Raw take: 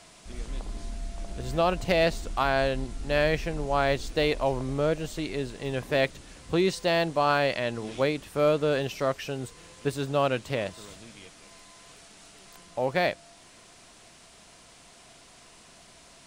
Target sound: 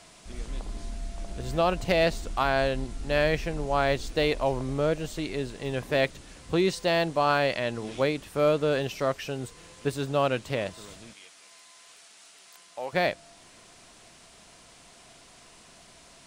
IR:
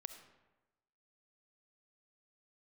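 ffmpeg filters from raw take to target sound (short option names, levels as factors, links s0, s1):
-filter_complex "[0:a]asettb=1/sr,asplit=3[s0][s1][s2];[s0]atrim=end=11.134[s3];[s1]atrim=start=11.13:end=12.93,asetpts=PTS-STARTPTS,afade=t=in:d=0.004:c=qsin,afade=t=out:st=1.796:d=0.004:c=qsin,highpass=f=1200:p=1[s4];[s2]atrim=start=12.926[s5];[s3][s4]acrossfade=d=0.004:c1=hsin:c2=qsin[s6];[s6][s5]acrossfade=d=0.004:c1=qsin:c2=hsin"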